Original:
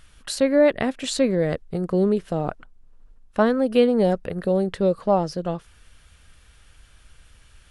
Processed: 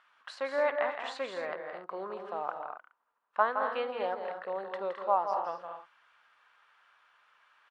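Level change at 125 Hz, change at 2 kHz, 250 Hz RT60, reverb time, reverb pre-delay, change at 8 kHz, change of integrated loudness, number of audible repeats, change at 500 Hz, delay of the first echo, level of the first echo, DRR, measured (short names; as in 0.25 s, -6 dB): under -30 dB, -4.0 dB, none, none, none, n/a, -11.5 dB, 4, -12.5 dB, 52 ms, -18.5 dB, none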